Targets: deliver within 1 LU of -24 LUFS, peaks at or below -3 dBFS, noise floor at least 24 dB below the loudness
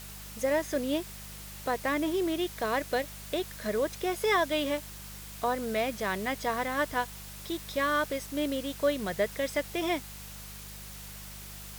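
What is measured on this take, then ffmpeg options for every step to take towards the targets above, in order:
hum 50 Hz; highest harmonic 200 Hz; hum level -45 dBFS; noise floor -44 dBFS; noise floor target -55 dBFS; loudness -31.0 LUFS; peak level -15.0 dBFS; loudness target -24.0 LUFS
-> -af "bandreject=f=50:t=h:w=4,bandreject=f=100:t=h:w=4,bandreject=f=150:t=h:w=4,bandreject=f=200:t=h:w=4"
-af "afftdn=nr=11:nf=-44"
-af "volume=2.24"

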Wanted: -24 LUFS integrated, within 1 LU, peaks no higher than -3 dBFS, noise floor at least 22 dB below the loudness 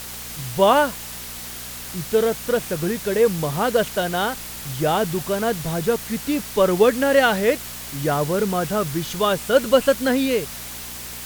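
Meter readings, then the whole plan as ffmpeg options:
hum 60 Hz; highest harmonic 240 Hz; hum level -42 dBFS; noise floor -34 dBFS; noise floor target -44 dBFS; loudness -21.5 LUFS; peak level -3.5 dBFS; loudness target -24.0 LUFS
-> -af "bandreject=f=60:t=h:w=4,bandreject=f=120:t=h:w=4,bandreject=f=180:t=h:w=4,bandreject=f=240:t=h:w=4"
-af "afftdn=nr=10:nf=-34"
-af "volume=0.75"

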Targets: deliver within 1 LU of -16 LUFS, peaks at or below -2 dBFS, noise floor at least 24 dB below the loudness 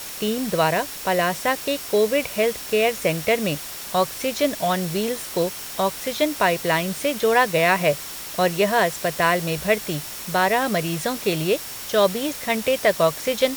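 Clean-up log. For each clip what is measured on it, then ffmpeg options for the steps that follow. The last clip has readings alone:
steady tone 5.5 kHz; tone level -45 dBFS; noise floor -34 dBFS; noise floor target -46 dBFS; loudness -22.0 LUFS; peak level -4.0 dBFS; loudness target -16.0 LUFS
-> -af "bandreject=f=5500:w=30"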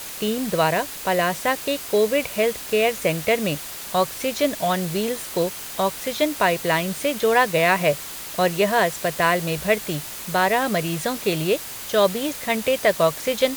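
steady tone not found; noise floor -35 dBFS; noise floor target -46 dBFS
-> -af "afftdn=nr=11:nf=-35"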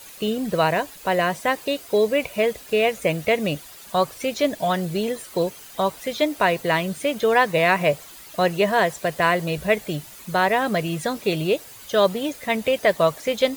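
noise floor -43 dBFS; noise floor target -47 dBFS
-> -af "afftdn=nr=6:nf=-43"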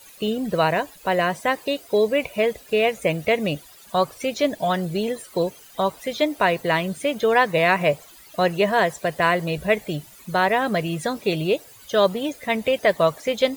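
noise floor -47 dBFS; loudness -22.5 LUFS; peak level -4.5 dBFS; loudness target -16.0 LUFS
-> -af "volume=2.11,alimiter=limit=0.794:level=0:latency=1"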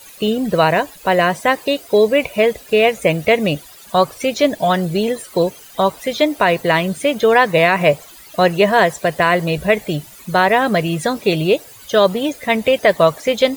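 loudness -16.5 LUFS; peak level -2.0 dBFS; noise floor -41 dBFS

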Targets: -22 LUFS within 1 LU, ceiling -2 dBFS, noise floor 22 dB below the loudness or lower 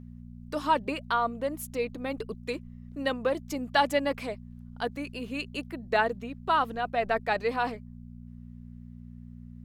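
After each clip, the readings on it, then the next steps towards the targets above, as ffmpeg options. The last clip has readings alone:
hum 60 Hz; highest harmonic 240 Hz; hum level -42 dBFS; loudness -30.0 LUFS; peak level -11.0 dBFS; loudness target -22.0 LUFS
-> -af "bandreject=f=60:t=h:w=4,bandreject=f=120:t=h:w=4,bandreject=f=180:t=h:w=4,bandreject=f=240:t=h:w=4"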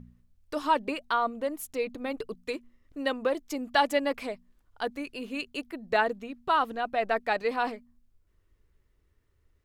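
hum not found; loudness -30.0 LUFS; peak level -11.0 dBFS; loudness target -22.0 LUFS
-> -af "volume=2.51"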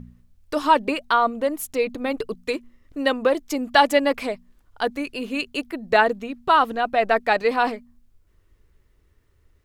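loudness -22.0 LUFS; peak level -3.0 dBFS; noise floor -61 dBFS

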